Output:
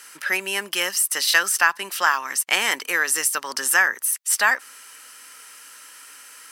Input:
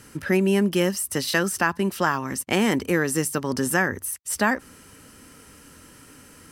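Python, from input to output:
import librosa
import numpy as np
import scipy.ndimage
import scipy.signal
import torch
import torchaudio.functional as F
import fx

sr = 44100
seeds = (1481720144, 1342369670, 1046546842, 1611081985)

y = scipy.signal.sosfilt(scipy.signal.butter(2, 1200.0, 'highpass', fs=sr, output='sos'), x)
y = y * 10.0 ** (7.5 / 20.0)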